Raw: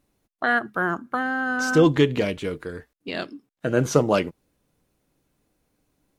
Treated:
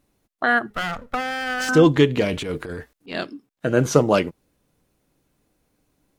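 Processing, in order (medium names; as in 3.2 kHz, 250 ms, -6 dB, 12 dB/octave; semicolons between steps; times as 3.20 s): 0.70–1.69 s: comb filter that takes the minimum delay 1.5 ms; 2.27–3.15 s: transient shaper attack -12 dB, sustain +7 dB; trim +2.5 dB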